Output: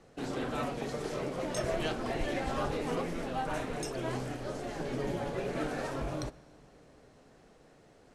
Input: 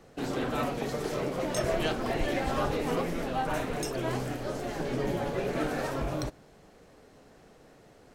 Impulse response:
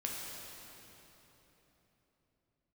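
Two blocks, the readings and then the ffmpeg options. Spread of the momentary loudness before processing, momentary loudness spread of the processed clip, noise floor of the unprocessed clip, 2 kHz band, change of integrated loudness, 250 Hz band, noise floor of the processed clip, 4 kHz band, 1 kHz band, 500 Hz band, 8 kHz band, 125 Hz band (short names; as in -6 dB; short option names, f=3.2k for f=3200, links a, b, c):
5 LU, 5 LU, -57 dBFS, -4.0 dB, -4.0 dB, -4.0 dB, -60 dBFS, -4.0 dB, -4.0 dB, -4.0 dB, -4.0 dB, -4.0 dB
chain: -filter_complex "[0:a]acrusher=bits=7:mode=log:mix=0:aa=0.000001,lowpass=f=11k:w=0.5412,lowpass=f=11k:w=1.3066,asplit=2[a][b];[1:a]atrim=start_sample=2205[c];[b][c]afir=irnorm=-1:irlink=0,volume=-21dB[d];[a][d]amix=inputs=2:normalize=0,volume=-4.5dB"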